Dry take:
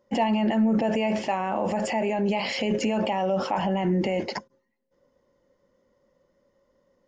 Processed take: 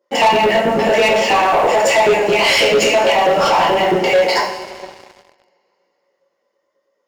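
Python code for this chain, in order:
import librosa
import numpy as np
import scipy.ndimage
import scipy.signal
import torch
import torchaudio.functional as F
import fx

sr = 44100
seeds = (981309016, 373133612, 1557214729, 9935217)

y = fx.filter_lfo_highpass(x, sr, shape='saw_up', hz=9.2, low_hz=340.0, high_hz=2700.0, q=1.5)
y = fx.rev_double_slope(y, sr, seeds[0], early_s=0.52, late_s=3.2, knee_db=-18, drr_db=-6.0)
y = fx.leveller(y, sr, passes=3)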